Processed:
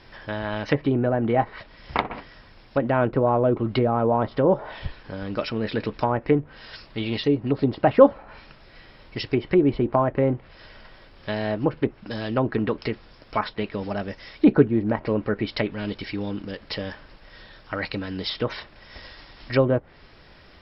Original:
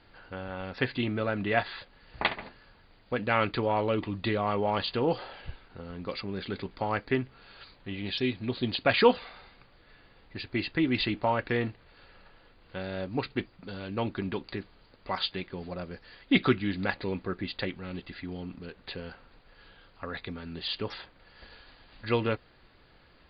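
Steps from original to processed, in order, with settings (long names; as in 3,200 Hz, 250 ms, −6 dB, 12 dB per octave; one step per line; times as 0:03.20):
speed change +13%
treble cut that deepens with the level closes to 820 Hz, closed at −26 dBFS
level +9 dB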